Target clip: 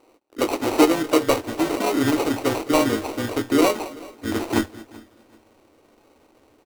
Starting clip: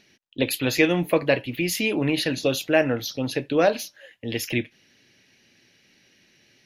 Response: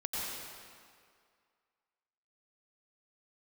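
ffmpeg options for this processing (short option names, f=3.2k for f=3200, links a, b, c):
-filter_complex "[0:a]asubboost=boost=8.5:cutoff=160,asplit=2[a][b];[b]adelay=21,volume=-7dB[c];[a][c]amix=inputs=2:normalize=0,asplit=2[d][e];[e]adelay=213,lowpass=f=3.2k:p=1,volume=-19.5dB,asplit=2[f][g];[g]adelay=213,lowpass=f=3.2k:p=1,volume=0.35,asplit=2[h][i];[i]adelay=213,lowpass=f=3.2k:p=1,volume=0.35[j];[f][h][j]amix=inputs=3:normalize=0[k];[d][k]amix=inputs=2:normalize=0,afreqshift=-15,acrusher=samples=26:mix=1:aa=0.000001,asplit=3[l][m][n];[m]asetrate=37084,aresample=44100,atempo=1.18921,volume=-9dB[o];[n]asetrate=55563,aresample=44100,atempo=0.793701,volume=-14dB[p];[l][o][p]amix=inputs=3:normalize=0,lowshelf=f=230:t=q:w=3:g=-10,asplit=2[q][r];[r]aecho=0:1:383|766:0.075|0.0202[s];[q][s]amix=inputs=2:normalize=0"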